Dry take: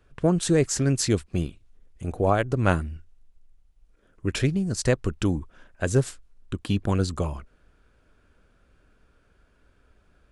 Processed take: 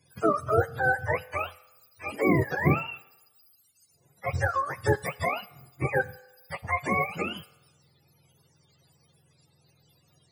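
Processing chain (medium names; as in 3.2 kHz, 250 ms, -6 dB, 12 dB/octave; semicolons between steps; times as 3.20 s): spectrum inverted on a logarithmic axis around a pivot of 460 Hz; on a send: tilt EQ +2.5 dB/octave + reverberation RT60 1.1 s, pre-delay 3 ms, DRR 17 dB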